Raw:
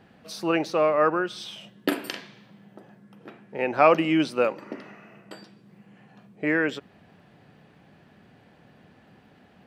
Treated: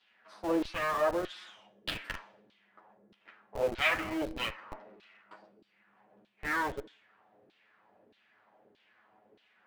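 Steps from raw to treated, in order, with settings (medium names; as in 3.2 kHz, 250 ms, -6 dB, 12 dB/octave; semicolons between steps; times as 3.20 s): comb filter that takes the minimum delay 9.4 ms; gated-style reverb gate 310 ms falling, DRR 11.5 dB; LFO band-pass saw down 1.6 Hz 360–3800 Hz; in parallel at -3 dB: Schmitt trigger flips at -36.5 dBFS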